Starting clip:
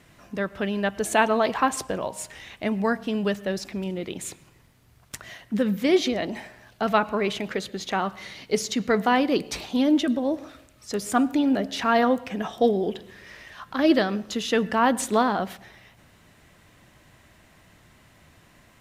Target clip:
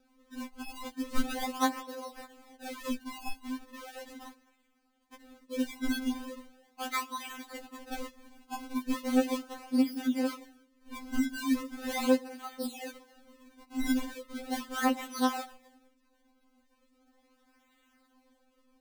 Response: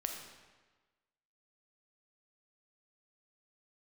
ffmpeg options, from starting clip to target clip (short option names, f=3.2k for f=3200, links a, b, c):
-af "acrusher=samples=41:mix=1:aa=0.000001:lfo=1:lforange=65.6:lforate=0.38,afftfilt=real='re*3.46*eq(mod(b,12),0)':imag='im*3.46*eq(mod(b,12),0)':win_size=2048:overlap=0.75,volume=-8.5dB"